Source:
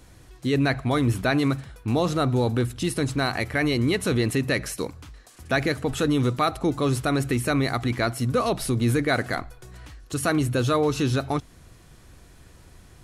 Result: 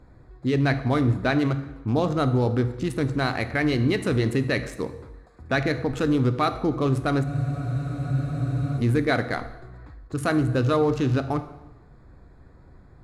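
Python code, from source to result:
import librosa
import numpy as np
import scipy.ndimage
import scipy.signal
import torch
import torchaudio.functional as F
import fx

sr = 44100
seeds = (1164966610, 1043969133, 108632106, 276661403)

y = fx.wiener(x, sr, points=15)
y = fx.high_shelf(y, sr, hz=9500.0, db=-11.0)
y = fx.rev_plate(y, sr, seeds[0], rt60_s=1.0, hf_ratio=0.85, predelay_ms=0, drr_db=9.5)
y = fx.spec_freeze(y, sr, seeds[1], at_s=7.27, hold_s=1.51)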